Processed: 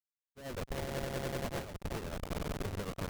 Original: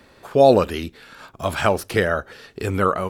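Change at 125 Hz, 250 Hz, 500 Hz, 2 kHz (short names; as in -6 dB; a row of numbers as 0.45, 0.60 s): -12.5, -16.5, -22.0, -18.5 dB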